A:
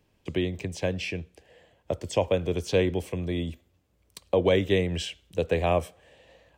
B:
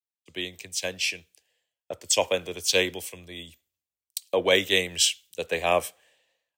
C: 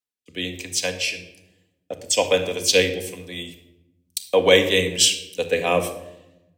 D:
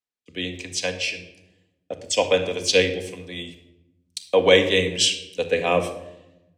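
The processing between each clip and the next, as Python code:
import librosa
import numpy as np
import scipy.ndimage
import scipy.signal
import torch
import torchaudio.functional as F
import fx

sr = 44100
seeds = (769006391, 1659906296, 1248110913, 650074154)

y1 = fx.tilt_eq(x, sr, slope=4.5)
y1 = fx.band_widen(y1, sr, depth_pct=100)
y2 = fx.rotary(y1, sr, hz=1.1)
y2 = fx.room_shoebox(y2, sr, seeds[0], volume_m3=3300.0, walls='furnished', distance_m=1.9)
y2 = F.gain(torch.from_numpy(y2), 6.5).numpy()
y3 = fx.air_absorb(y2, sr, metres=63.0)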